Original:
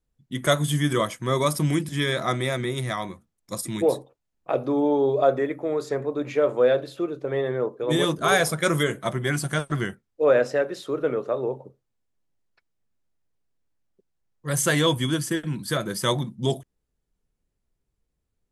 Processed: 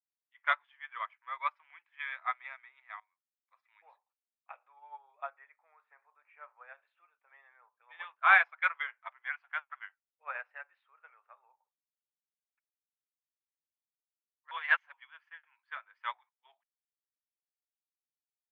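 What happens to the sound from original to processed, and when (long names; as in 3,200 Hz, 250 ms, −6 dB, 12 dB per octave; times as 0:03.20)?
0:03.00–0:03.87: fade in, from −16.5 dB
0:05.30–0:06.73: low-pass filter 3,400 Hz → 2,100 Hz
0:14.51–0:14.92: reverse
whole clip: elliptic band-pass filter 840–2,500 Hz, stop band 60 dB; spectral tilt +2.5 dB per octave; expander for the loud parts 2.5 to 1, over −37 dBFS; level +2 dB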